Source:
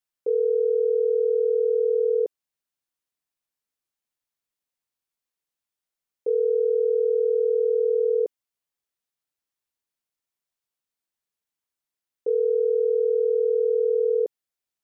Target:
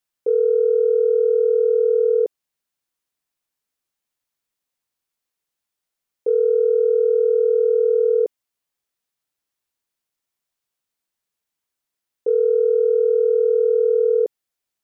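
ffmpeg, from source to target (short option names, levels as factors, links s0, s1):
-af "acontrast=22"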